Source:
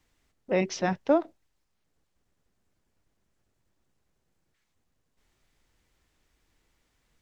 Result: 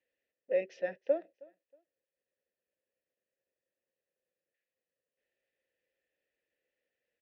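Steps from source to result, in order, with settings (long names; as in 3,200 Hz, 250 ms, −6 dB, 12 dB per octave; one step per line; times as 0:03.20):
formant filter e
repeating echo 317 ms, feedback 26%, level −24 dB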